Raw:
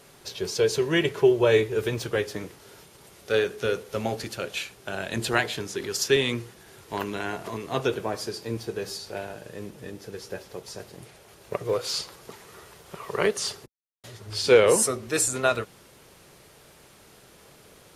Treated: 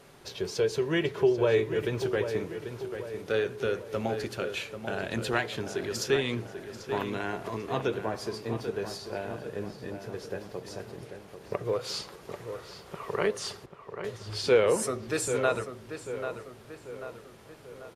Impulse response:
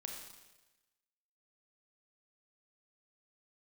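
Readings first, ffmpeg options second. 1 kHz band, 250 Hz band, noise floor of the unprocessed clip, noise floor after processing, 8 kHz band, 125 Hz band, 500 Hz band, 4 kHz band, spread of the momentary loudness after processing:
−3.0 dB, −2.5 dB, −54 dBFS, −51 dBFS, −9.5 dB, −2.0 dB, −3.5 dB, −6.5 dB, 17 LU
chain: -filter_complex "[0:a]highshelf=frequency=3800:gain=-8.5,asplit=2[link_01][link_02];[link_02]acompressor=threshold=-30dB:ratio=6,volume=1dB[link_03];[link_01][link_03]amix=inputs=2:normalize=0,asplit=2[link_04][link_05];[link_05]adelay=790,lowpass=frequency=3100:poles=1,volume=-9dB,asplit=2[link_06][link_07];[link_07]adelay=790,lowpass=frequency=3100:poles=1,volume=0.51,asplit=2[link_08][link_09];[link_09]adelay=790,lowpass=frequency=3100:poles=1,volume=0.51,asplit=2[link_10][link_11];[link_11]adelay=790,lowpass=frequency=3100:poles=1,volume=0.51,asplit=2[link_12][link_13];[link_13]adelay=790,lowpass=frequency=3100:poles=1,volume=0.51,asplit=2[link_14][link_15];[link_15]adelay=790,lowpass=frequency=3100:poles=1,volume=0.51[link_16];[link_04][link_06][link_08][link_10][link_12][link_14][link_16]amix=inputs=7:normalize=0,volume=-6.5dB"

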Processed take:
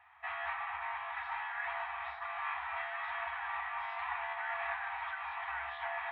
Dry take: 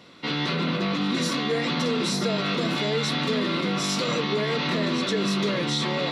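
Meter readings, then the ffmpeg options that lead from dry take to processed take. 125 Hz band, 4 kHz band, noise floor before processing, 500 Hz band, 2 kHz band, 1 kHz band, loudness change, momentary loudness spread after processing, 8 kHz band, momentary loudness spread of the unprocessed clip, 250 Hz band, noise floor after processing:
below −35 dB, −26.0 dB, −28 dBFS, −21.5 dB, −6.5 dB, −5.5 dB, −13.5 dB, 2 LU, below −40 dB, 1 LU, below −40 dB, −45 dBFS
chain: -af "afftfilt=real='re*(1-between(b*sr/4096,130,870))':imag='im*(1-between(b*sr/4096,130,870))':win_size=4096:overlap=0.75,highpass=frequency=170:width_type=q:width=0.5412,highpass=frequency=170:width_type=q:width=1.307,lowpass=frequency=2400:width_type=q:width=0.5176,lowpass=frequency=2400:width_type=q:width=0.7071,lowpass=frequency=2400:width_type=q:width=1.932,afreqshift=-200,volume=-5dB"

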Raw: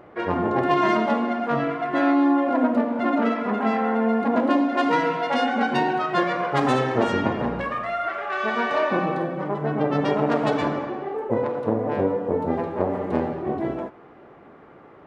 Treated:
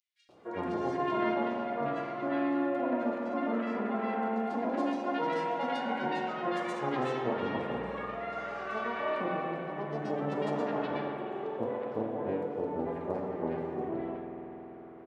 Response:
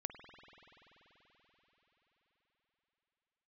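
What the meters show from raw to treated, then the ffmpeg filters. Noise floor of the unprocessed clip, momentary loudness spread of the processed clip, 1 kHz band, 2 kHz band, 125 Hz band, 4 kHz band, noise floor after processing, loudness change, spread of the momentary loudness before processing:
−48 dBFS, 7 LU, −10.0 dB, −11.0 dB, −12.0 dB, −11.0 dB, −47 dBFS, −10.0 dB, 7 LU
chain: -filter_complex "[0:a]lowshelf=frequency=120:gain=-8,acrossover=split=1300|4200[link_01][link_02][link_03];[link_01]adelay=290[link_04];[link_02]adelay=370[link_05];[link_04][link_05][link_03]amix=inputs=3:normalize=0[link_06];[1:a]atrim=start_sample=2205[link_07];[link_06][link_07]afir=irnorm=-1:irlink=0,volume=-6.5dB"

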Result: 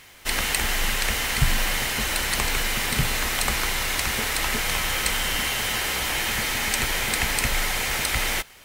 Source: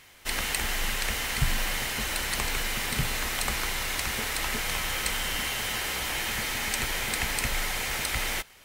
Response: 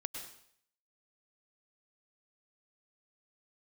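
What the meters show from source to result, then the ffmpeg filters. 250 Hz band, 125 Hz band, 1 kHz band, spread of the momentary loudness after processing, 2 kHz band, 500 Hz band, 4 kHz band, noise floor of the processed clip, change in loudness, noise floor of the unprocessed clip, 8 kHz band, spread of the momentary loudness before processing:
+5.0 dB, +5.0 dB, +5.0 dB, 1 LU, +5.0 dB, +5.0 dB, +5.0 dB, −48 dBFS, +5.0 dB, −53 dBFS, +5.0 dB, 1 LU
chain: -af "acrusher=bits=10:mix=0:aa=0.000001,volume=5dB"

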